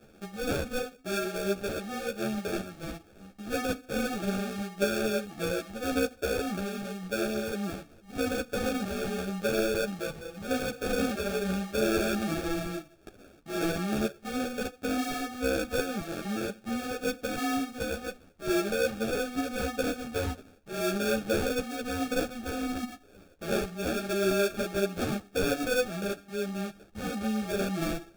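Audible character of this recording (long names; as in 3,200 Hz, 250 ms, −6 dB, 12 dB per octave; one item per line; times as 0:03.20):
aliases and images of a low sample rate 1,000 Hz, jitter 0%
a shimmering, thickened sound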